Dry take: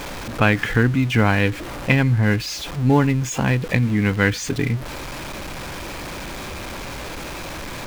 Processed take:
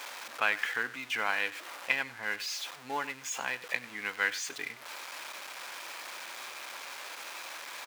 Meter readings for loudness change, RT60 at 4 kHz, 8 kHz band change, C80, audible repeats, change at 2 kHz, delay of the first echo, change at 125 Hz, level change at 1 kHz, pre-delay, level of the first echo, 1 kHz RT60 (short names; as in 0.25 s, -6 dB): -13.5 dB, none, -7.5 dB, none, 1, -7.5 dB, 97 ms, under -40 dB, -10.0 dB, none, -17.5 dB, none